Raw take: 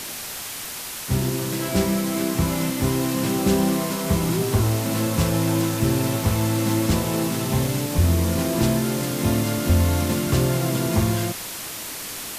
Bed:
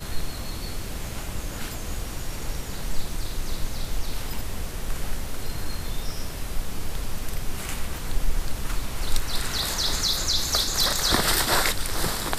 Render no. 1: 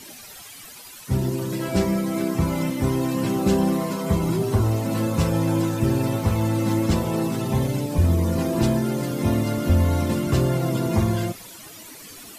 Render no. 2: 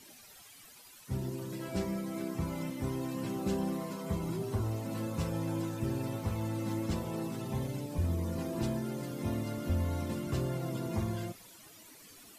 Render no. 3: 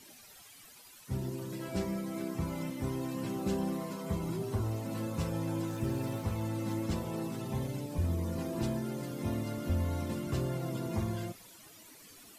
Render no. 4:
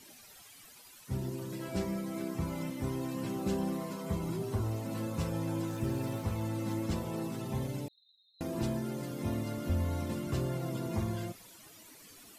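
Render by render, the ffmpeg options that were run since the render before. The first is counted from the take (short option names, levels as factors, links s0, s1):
-af "afftdn=nr=14:nf=-33"
-af "volume=0.224"
-filter_complex "[0:a]asettb=1/sr,asplit=3[s0][s1][s2];[s0]atrim=end=5.694[s3];[s1]atrim=start=5.69:end=6.22,asetpts=PTS-STARTPTS,afade=t=in:d=0.004:c=qsin,afade=t=out:st=0.526:d=0.004:c=qsin,aeval=exprs='val(0)+0.5*0.00299*sgn(val(0))':c=same[s4];[s2]atrim=start=6.216[s5];[s3][s4]acrossfade=d=0.004:c1=hsin:c2=qsin[s6];[s6][s5]acrossfade=d=0.004:c1=qsin:c2=hsin"
-filter_complex "[0:a]asettb=1/sr,asplit=3[s0][s1][s2];[s0]atrim=end=7.884[s3];[s1]atrim=start=7.88:end=8.41,asetpts=PTS-STARTPTS,afade=t=in:d=0.004:c=qsin,afade=t=out:st=0.526:d=0.004:c=qsin,asuperpass=centerf=3900:order=20:qfactor=6.9[s4];[s2]atrim=start=8.406[s5];[s3][s4]acrossfade=d=0.004:c1=hsin:c2=qsin[s6];[s6][s5]acrossfade=d=0.004:c1=qsin:c2=hsin"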